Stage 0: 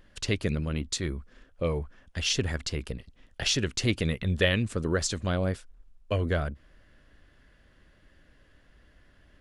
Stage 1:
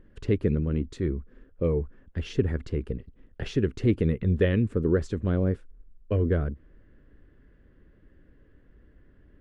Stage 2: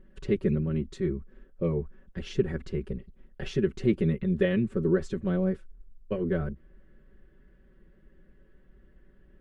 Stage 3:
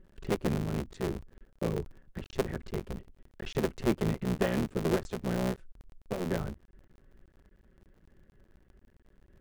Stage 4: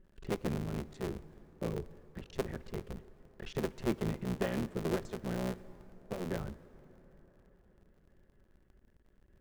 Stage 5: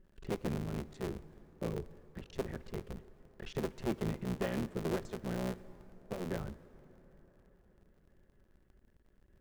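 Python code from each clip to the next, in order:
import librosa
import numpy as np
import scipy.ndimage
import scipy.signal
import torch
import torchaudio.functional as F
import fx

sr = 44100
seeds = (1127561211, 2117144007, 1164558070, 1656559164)

y1 = fx.curve_eq(x, sr, hz=(150.0, 440.0, 640.0, 1700.0, 5200.0), db=(0, 3, -10, -9, -24))
y1 = y1 * librosa.db_to_amplitude(3.5)
y2 = y1 + 0.96 * np.pad(y1, (int(5.3 * sr / 1000.0), 0))[:len(y1)]
y2 = y2 * librosa.db_to_amplitude(-4.0)
y3 = fx.cycle_switch(y2, sr, every=3, mode='muted')
y3 = y3 * librosa.db_to_amplitude(-2.5)
y4 = fx.rev_plate(y3, sr, seeds[0], rt60_s=4.8, hf_ratio=0.5, predelay_ms=0, drr_db=17.0)
y4 = y4 * librosa.db_to_amplitude(-5.0)
y5 = np.clip(y4, -10.0 ** (-25.0 / 20.0), 10.0 ** (-25.0 / 20.0))
y5 = y5 * librosa.db_to_amplitude(-1.0)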